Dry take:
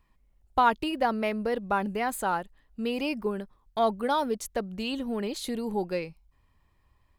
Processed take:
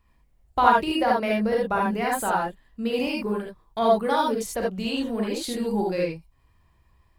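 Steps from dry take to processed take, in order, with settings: gated-style reverb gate 100 ms rising, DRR -2.5 dB

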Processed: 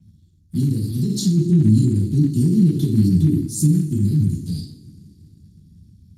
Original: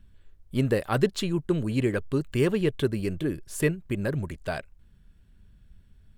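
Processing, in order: two-slope reverb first 0.55 s, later 4 s, from -27 dB, DRR -7 dB; peak limiter -14.5 dBFS, peak gain reduction 11.5 dB; inverse Chebyshev band-stop 570–2300 Hz, stop band 50 dB; 1.37–3.90 s: bass shelf 470 Hz +3.5 dB; trim +6.5 dB; Speex 36 kbps 32 kHz

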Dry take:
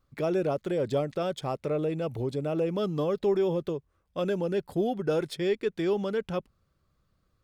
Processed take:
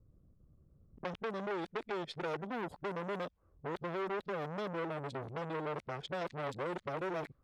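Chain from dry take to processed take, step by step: reverse the whole clip; compression 3:1, threshold -47 dBFS, peak gain reduction 18.5 dB; level-controlled noise filter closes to 330 Hz, open at -39.5 dBFS; transformer saturation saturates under 1.6 kHz; trim +9.5 dB

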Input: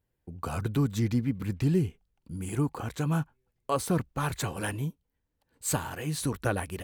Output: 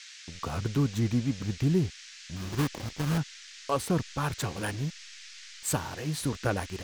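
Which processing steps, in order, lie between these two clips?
2.36–3.18 s: sample-rate reducer 1.4 kHz, jitter 20%; hysteresis with a dead band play -37.5 dBFS; band noise 1.6–6.7 kHz -48 dBFS

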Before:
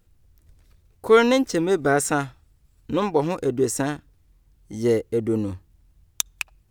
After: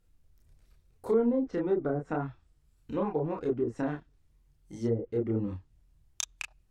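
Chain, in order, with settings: low-pass that closes with the level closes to 440 Hz, closed at -15 dBFS; chorus voices 6, 0.81 Hz, delay 30 ms, depth 4.7 ms; trim -4.5 dB

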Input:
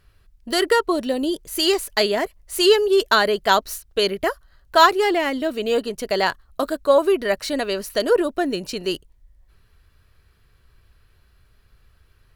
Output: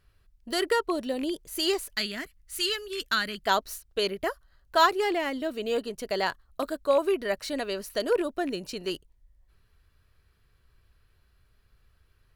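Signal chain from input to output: rattle on loud lows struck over -28 dBFS, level -22 dBFS; 1.95–3.47 s: high-order bell 620 Hz -14.5 dB; trim -7.5 dB

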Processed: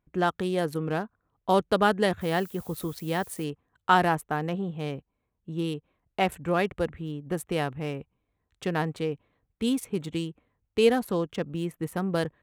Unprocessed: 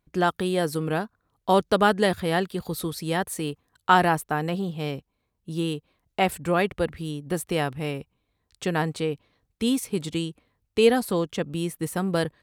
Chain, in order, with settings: local Wiener filter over 9 samples; 2.20–3.43 s: added noise violet -47 dBFS; trim -2.5 dB

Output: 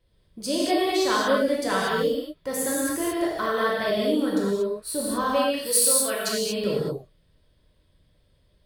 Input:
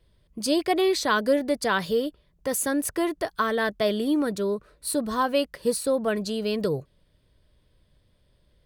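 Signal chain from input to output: 5.57–6.29 s: tilt EQ +4.5 dB/octave; gated-style reverb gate 260 ms flat, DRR -6 dB; trim -6 dB

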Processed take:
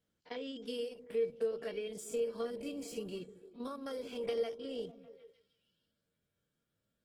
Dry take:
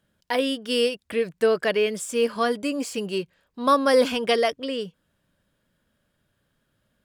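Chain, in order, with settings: spectrogram pixelated in time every 50 ms; treble shelf 6.5 kHz -3 dB; compression 20:1, threshold -26 dBFS, peak gain reduction 13 dB; high-pass 71 Hz 6 dB/octave; peaking EQ 1.3 kHz -6 dB 2.5 oct; feedback comb 460 Hz, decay 0.17 s, harmonics odd, mix 80%; on a send: repeats whose band climbs or falls 151 ms, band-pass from 220 Hz, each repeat 0.7 oct, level -11 dB; on the sum: trim +3 dB; Opus 16 kbps 48 kHz

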